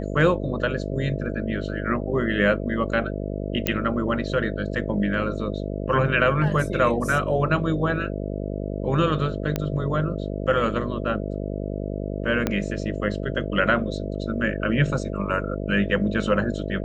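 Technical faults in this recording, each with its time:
mains buzz 50 Hz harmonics 13 −29 dBFS
0:03.67: click −6 dBFS
0:09.56: click −10 dBFS
0:12.47: click −8 dBFS

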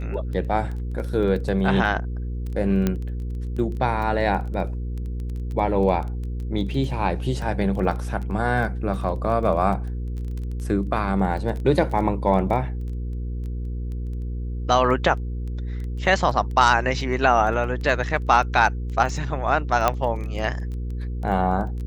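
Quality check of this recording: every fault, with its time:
surface crackle 13 per second −30 dBFS
mains hum 60 Hz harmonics 8 −28 dBFS
0:02.87: click −9 dBFS
0:07.42: drop-out 2.8 ms
0:19.88: click −5 dBFS

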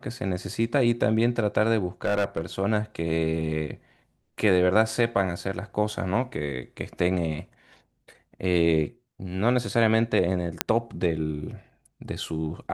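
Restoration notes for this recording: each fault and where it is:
0:02.04–0:02.46: clipping −19.5 dBFS
0:10.61: click −2 dBFS

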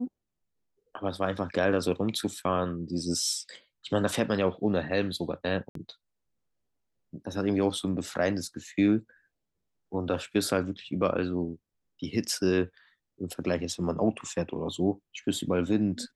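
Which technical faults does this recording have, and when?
0:05.69–0:05.75: drop-out 63 ms

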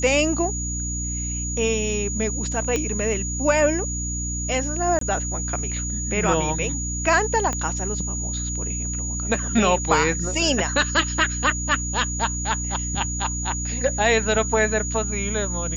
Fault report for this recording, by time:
mains hum 60 Hz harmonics 5 −29 dBFS
whistle 6,800 Hz −28 dBFS
0:02.76: click −10 dBFS
0:04.99–0:05.01: drop-out 23 ms
0:07.53: click −12 dBFS

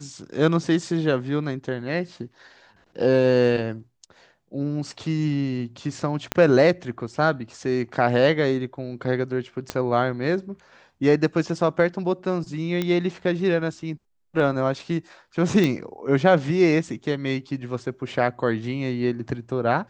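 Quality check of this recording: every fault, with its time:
0:06.32: click −8 dBFS
0:09.70: click −12 dBFS
0:12.82: click −12 dBFS
0:15.64: click −10 dBFS

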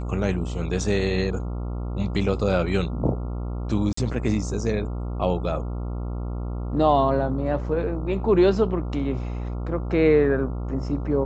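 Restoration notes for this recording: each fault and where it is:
mains buzz 60 Hz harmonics 23 −29 dBFS
0:03.93–0:03.97: drop-out 44 ms

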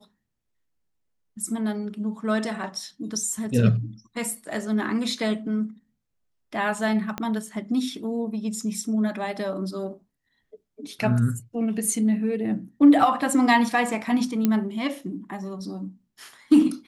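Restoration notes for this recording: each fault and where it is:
0:07.18: click −14 dBFS
0:14.45: click −9 dBFS

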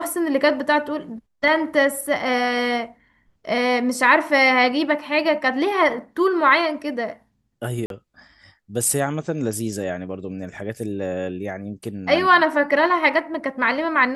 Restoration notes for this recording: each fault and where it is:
0:07.86–0:07.90: drop-out 42 ms

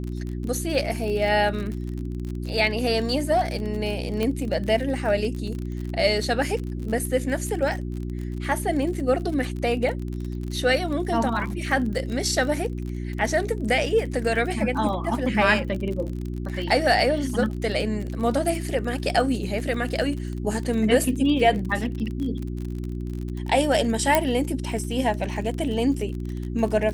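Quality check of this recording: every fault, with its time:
surface crackle 40 per second −30 dBFS
mains hum 60 Hz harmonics 6 −30 dBFS
0:04.23: click −13 dBFS
0:24.15: click −4 dBFS

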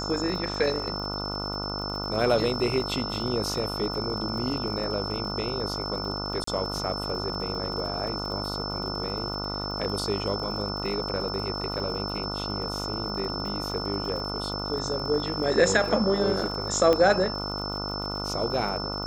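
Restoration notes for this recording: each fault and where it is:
mains buzz 50 Hz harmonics 29 −34 dBFS
surface crackle 58 per second −36 dBFS
whistle 5,300 Hz −33 dBFS
0:06.44–0:06.47: drop-out 34 ms
0:16.93: click −11 dBFS

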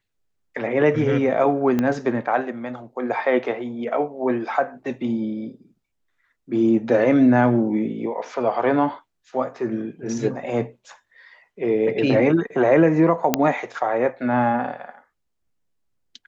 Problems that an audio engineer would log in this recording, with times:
0:01.79: click −10 dBFS
0:13.34: click −1 dBFS

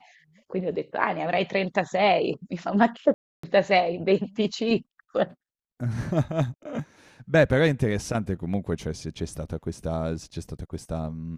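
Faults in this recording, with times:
0:03.14–0:03.43: drop-out 294 ms

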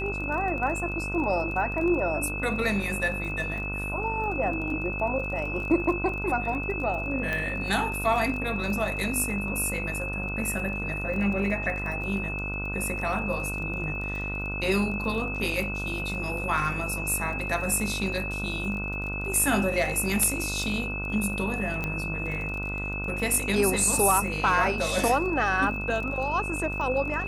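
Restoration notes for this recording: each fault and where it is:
mains buzz 50 Hz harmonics 30 −34 dBFS
surface crackle 26 per second −34 dBFS
whistle 2,600 Hz −32 dBFS
0:07.33: click −16 dBFS
0:21.84: click −16 dBFS

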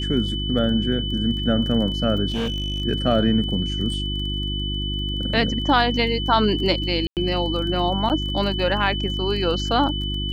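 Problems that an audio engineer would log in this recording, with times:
surface crackle 21 per second −31 dBFS
mains hum 50 Hz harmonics 7 −27 dBFS
whistle 3,000 Hz −28 dBFS
0:02.30–0:02.82: clipping −20.5 dBFS
0:07.07–0:07.17: drop-out 98 ms
0:08.09–0:08.10: drop-out 8.5 ms

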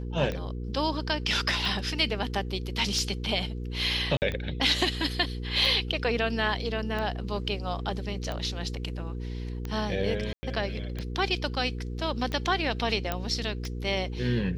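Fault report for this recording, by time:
mains hum 60 Hz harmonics 8 −34 dBFS
scratch tick 45 rpm −20 dBFS
0:04.17–0:04.22: drop-out 49 ms
0:10.33–0:10.43: drop-out 100 ms
0:13.12: click −13 dBFS

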